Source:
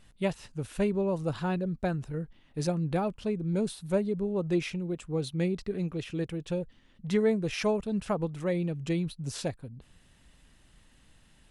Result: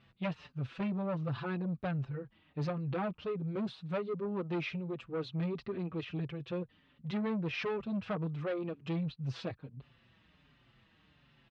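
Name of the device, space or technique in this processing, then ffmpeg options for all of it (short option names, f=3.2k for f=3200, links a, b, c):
barber-pole flanger into a guitar amplifier: -filter_complex "[0:a]asplit=2[a][b];[b]adelay=5.5,afreqshift=-1.4[c];[a][c]amix=inputs=2:normalize=1,asoftclip=type=tanh:threshold=-30.5dB,highpass=88,equalizer=f=130:t=q:w=4:g=5,equalizer=f=1.2k:t=q:w=4:g=5,equalizer=f=2.5k:t=q:w=4:g=3,lowpass=f=4.1k:w=0.5412,lowpass=f=4.1k:w=1.3066"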